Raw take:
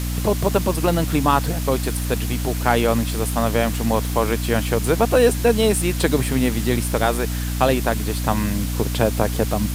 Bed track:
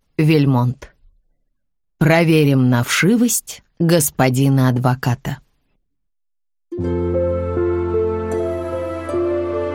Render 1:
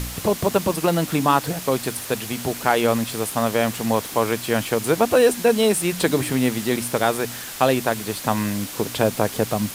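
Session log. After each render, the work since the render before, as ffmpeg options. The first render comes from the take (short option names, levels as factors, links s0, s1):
-af "bandreject=f=60:t=h:w=4,bandreject=f=120:t=h:w=4,bandreject=f=180:t=h:w=4,bandreject=f=240:t=h:w=4,bandreject=f=300:t=h:w=4"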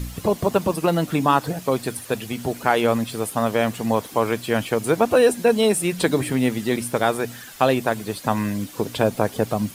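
-af "afftdn=nr=10:nf=-34"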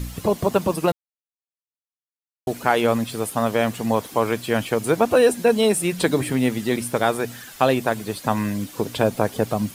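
-filter_complex "[0:a]asplit=3[s0][s1][s2];[s0]atrim=end=0.92,asetpts=PTS-STARTPTS,afade=t=out:st=0.916:d=0.004:c=hsin[s3];[s1]atrim=start=0.92:end=2.47,asetpts=PTS-STARTPTS,volume=0[s4];[s2]atrim=start=2.47,asetpts=PTS-STARTPTS,afade=t=in:d=0.004:c=hsin[s5];[s3][s4][s5]concat=n=3:v=0:a=1"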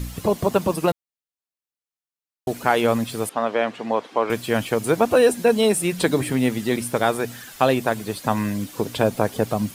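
-filter_complex "[0:a]asettb=1/sr,asplit=3[s0][s1][s2];[s0]atrim=end=3.294[s3];[s1]atrim=start=3.29:end=4.3,asetpts=PTS-STARTPTS,afade=t=in:d=0.004:c=qsin,afade=t=out:st=1.006:d=0.004:c=qsin,highpass=310,lowpass=3300[s4];[s2]atrim=start=4.296[s5];[s3][s4]acrossfade=d=0.004:c1=hsin:c2=qsin[s6];[s6][s5]acrossfade=d=0.004:c1=qsin:c2=hsin"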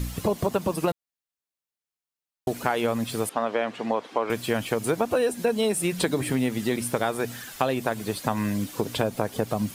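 -af "acompressor=threshold=0.0891:ratio=4"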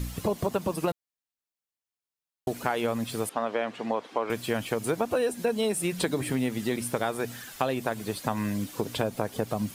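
-af "volume=0.708"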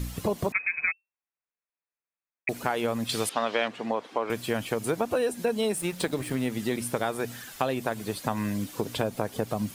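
-filter_complex "[0:a]asettb=1/sr,asplit=3[s0][s1][s2];[s0]atrim=end=0.524[s3];[s1]atrim=start=0.52:end=2.49,asetpts=PTS-STARTPTS,afade=t=in:d=0.004:c=qsin,afade=t=out:st=1.966:d=0.004:c=qsin,lowpass=f=2300:t=q:w=0.5098,lowpass=f=2300:t=q:w=0.6013,lowpass=f=2300:t=q:w=0.9,lowpass=f=2300:t=q:w=2.563,afreqshift=-2700[s4];[s2]atrim=start=2.486[s5];[s3][s4]acrossfade=d=0.004:c1=hsin:c2=qsin[s6];[s6][s5]acrossfade=d=0.004:c1=qsin:c2=hsin,asettb=1/sr,asplit=3[s7][s8][s9];[s7]atrim=end=3.094[s10];[s8]atrim=start=3.09:end=3.68,asetpts=PTS-STARTPTS,afade=t=in:d=0.004:c=qsin,afade=t=out:st=0.586:d=0.004:c=qsin,equalizer=f=4000:t=o:w=2.2:g=11.5[s11];[s9]atrim=start=3.676[s12];[s10][s11]acrossfade=d=0.004:c1=hsin:c2=qsin[s13];[s13][s12]acrossfade=d=0.004:c1=qsin:c2=hsin,asettb=1/sr,asplit=3[s14][s15][s16];[s14]atrim=end=5.764[s17];[s15]atrim=start=5.76:end=6.46,asetpts=PTS-STARTPTS,afade=t=in:d=0.004:c=qsin,afade=t=out:st=0.696:d=0.004:c=qsin,aeval=exprs='sgn(val(0))*max(abs(val(0))-0.00891,0)':c=same[s18];[s16]atrim=start=6.456[s19];[s17][s18]acrossfade=d=0.004:c1=hsin:c2=qsin[s20];[s20][s19]acrossfade=d=0.004:c1=qsin:c2=hsin"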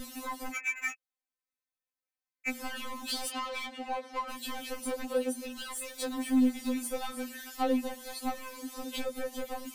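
-af "asoftclip=type=hard:threshold=0.0501,afftfilt=real='re*3.46*eq(mod(b,12),0)':imag='im*3.46*eq(mod(b,12),0)':win_size=2048:overlap=0.75"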